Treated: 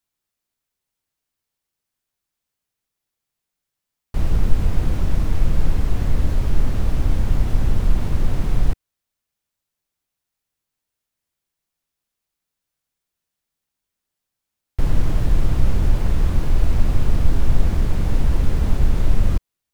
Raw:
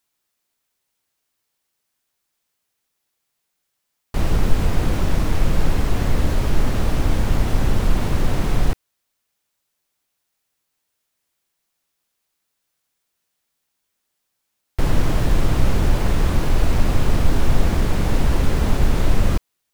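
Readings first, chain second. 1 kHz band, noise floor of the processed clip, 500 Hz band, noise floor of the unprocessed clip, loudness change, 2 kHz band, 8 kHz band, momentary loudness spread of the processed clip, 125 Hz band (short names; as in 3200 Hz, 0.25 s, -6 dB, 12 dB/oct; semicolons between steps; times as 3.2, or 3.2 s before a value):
-7.0 dB, -83 dBFS, -6.5 dB, -76 dBFS, -1.0 dB, -7.5 dB, -7.5 dB, 3 LU, -0.5 dB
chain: low shelf 180 Hz +9 dB; gain -7.5 dB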